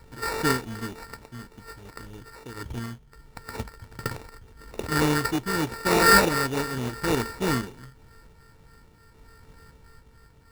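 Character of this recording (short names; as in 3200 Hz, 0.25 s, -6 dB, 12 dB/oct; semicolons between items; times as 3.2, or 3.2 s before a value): a buzz of ramps at a fixed pitch in blocks of 32 samples; random-step tremolo; phasing stages 12, 3.4 Hz, lowest notch 650–1300 Hz; aliases and images of a low sample rate 3200 Hz, jitter 0%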